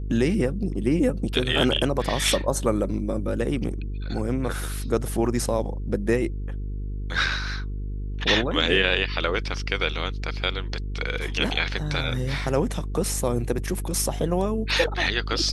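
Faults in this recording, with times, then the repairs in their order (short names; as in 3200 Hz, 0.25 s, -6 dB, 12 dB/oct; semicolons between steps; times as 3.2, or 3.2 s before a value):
buzz 50 Hz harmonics 9 -30 dBFS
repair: de-hum 50 Hz, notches 9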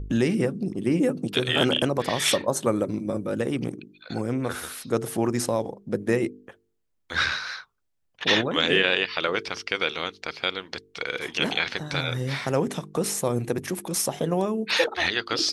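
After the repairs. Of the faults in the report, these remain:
none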